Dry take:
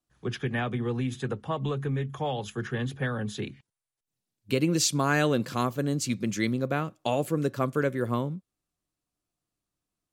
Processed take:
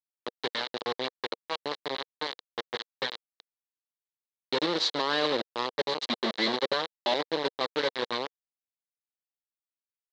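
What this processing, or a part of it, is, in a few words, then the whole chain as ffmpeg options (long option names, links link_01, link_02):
hand-held game console: -filter_complex "[0:a]asettb=1/sr,asplit=3[link_01][link_02][link_03];[link_01]atrim=end=5.774[link_04];[link_02]atrim=start=5.77:end=7.14,asetpts=PTS-STARTPTS,afade=type=in:duration=0.004:curve=qsin,afade=type=out:start_time=1.366:duration=0.004:curve=qsin,aecho=1:1:5.1:0.96,atrim=end_sample=60417[link_05];[link_03]atrim=start=7.136[link_06];[link_04][link_05]acrossfade=duration=0.004:curve1=hsin:curve2=qsin[link_07];[link_07][link_06]acrossfade=duration=0.004:curve1=qsin:curve2=hsin,acrusher=bits=3:mix=0:aa=0.000001,highpass=410,equalizer=frequency=480:width_type=q:width=4:gain=3,equalizer=frequency=700:width_type=q:width=4:gain=-6,equalizer=frequency=1400:width_type=q:width=4:gain=-7,equalizer=frequency=2500:width_type=q:width=4:gain=-9,equalizer=frequency=4000:width_type=q:width=4:gain=10,lowpass=frequency=4100:width=0.5412,lowpass=frequency=4100:width=1.3066"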